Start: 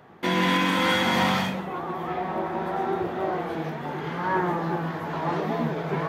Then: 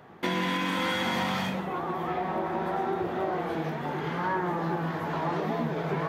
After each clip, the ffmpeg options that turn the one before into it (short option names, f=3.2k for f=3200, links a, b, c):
-af "acompressor=threshold=-25dB:ratio=6"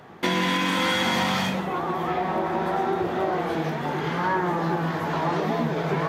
-af "equalizer=f=6.3k:w=0.65:g=4.5,volume=4.5dB"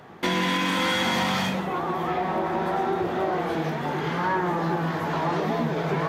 -af "asoftclip=type=tanh:threshold=-13dB"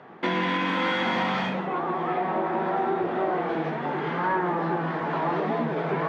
-af "highpass=180,lowpass=2.6k"